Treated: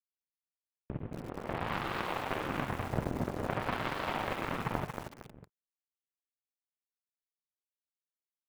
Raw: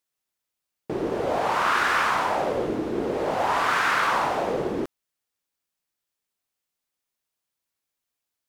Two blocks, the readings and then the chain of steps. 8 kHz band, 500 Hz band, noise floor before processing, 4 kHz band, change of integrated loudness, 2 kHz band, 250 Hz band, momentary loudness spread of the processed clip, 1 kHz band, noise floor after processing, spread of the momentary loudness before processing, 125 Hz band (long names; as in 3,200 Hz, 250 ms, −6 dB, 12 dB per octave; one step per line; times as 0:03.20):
−14.5 dB, −12.5 dB, −85 dBFS, −11.0 dB, −12.0 dB, −13.5 dB, −7.5 dB, 9 LU, −13.5 dB, below −85 dBFS, 8 LU, +1.0 dB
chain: camcorder AGC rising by 8.6 dB per second
low-shelf EQ 340 Hz +10.5 dB
single-sideband voice off tune −230 Hz 290–3,000 Hz
double-tracking delay 45 ms −7.5 dB
in parallel at −4.5 dB: soft clipping −26 dBFS, distortion −8 dB
on the sum: parametric band 120 Hz +3.5 dB 0.63 octaves
on a send: single-tap delay 592 ms −4 dB
on the sum: power curve on the samples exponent 3
feedback echo at a low word length 230 ms, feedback 35%, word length 6 bits, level −6 dB
level −6 dB